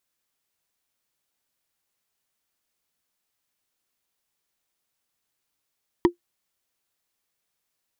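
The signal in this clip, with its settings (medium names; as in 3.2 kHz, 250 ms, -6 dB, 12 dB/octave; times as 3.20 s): wood hit, lowest mode 348 Hz, decay 0.11 s, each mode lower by 5.5 dB, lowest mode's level -8.5 dB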